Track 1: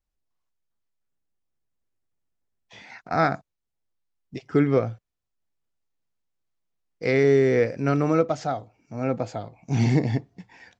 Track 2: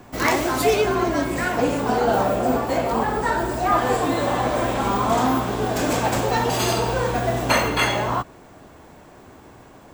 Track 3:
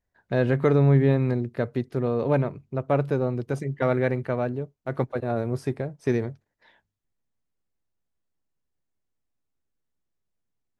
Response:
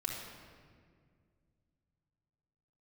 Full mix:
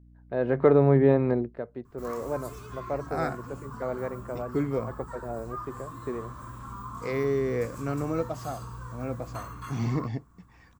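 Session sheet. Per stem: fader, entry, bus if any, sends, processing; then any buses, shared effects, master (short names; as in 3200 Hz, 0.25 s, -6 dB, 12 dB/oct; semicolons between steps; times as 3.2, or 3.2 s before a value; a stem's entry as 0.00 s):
-13.0 dB, 0.00 s, no send, dry
-14.0 dB, 1.85 s, no send, EQ curve 120 Hz 0 dB, 740 Hz -27 dB, 1100 Hz +2 dB, 2100 Hz -17 dB, 3500 Hz -16 dB, 7800 Hz -7 dB; compressor 1.5:1, threshold -31 dBFS, peak gain reduction 5 dB
1.41 s -5.5 dB -> 1.63 s -18 dB, 0.00 s, no send, AGC gain up to 7 dB; band-pass 700 Hz, Q 0.61; hum 60 Hz, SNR 24 dB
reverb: off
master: bell 2800 Hz -3 dB 2.7 oct; AGC gain up to 5 dB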